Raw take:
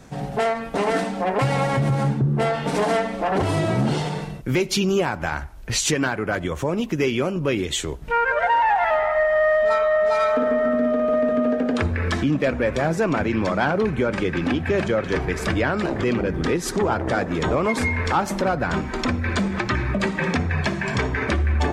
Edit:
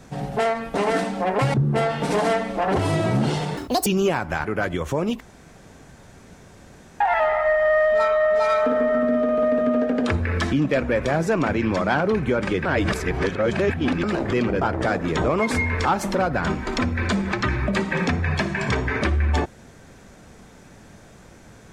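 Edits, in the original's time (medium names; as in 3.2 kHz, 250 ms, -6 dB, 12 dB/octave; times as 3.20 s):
1.54–2.18 s: delete
4.21–4.78 s: speed 194%
5.36–6.15 s: delete
6.91–8.71 s: room tone
14.36–15.74 s: reverse
16.32–16.88 s: delete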